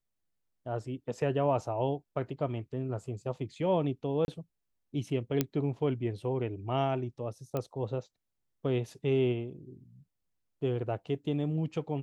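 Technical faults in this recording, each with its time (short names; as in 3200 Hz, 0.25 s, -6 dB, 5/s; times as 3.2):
4.25–4.28 gap 31 ms
5.41 pop -12 dBFS
7.57 pop -20 dBFS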